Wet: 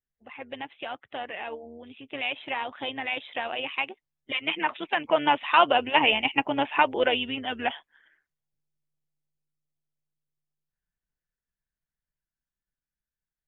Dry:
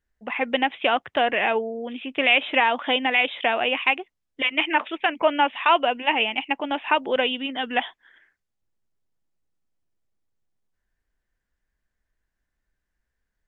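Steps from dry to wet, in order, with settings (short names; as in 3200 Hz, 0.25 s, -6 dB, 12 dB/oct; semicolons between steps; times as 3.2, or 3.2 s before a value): bin magnitudes rounded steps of 15 dB; Doppler pass-by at 6.23, 8 m/s, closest 7.1 m; AM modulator 150 Hz, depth 35%; gain +4 dB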